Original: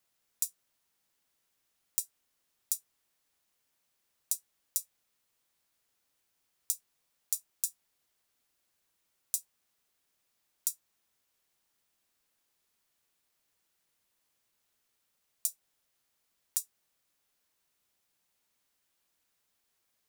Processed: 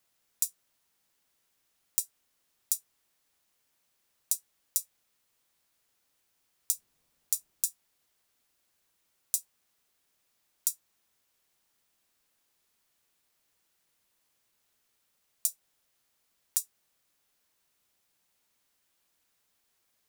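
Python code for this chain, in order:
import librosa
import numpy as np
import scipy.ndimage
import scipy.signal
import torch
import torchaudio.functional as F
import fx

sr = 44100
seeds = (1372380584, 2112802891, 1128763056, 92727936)

y = fx.low_shelf(x, sr, hz=380.0, db=10.0, at=(6.73, 7.65))
y = y * librosa.db_to_amplitude(3.0)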